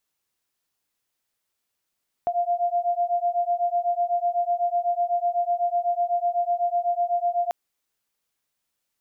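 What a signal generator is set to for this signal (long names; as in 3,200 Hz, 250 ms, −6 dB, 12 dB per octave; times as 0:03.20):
two tones that beat 695 Hz, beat 8 Hz, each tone −24 dBFS 5.24 s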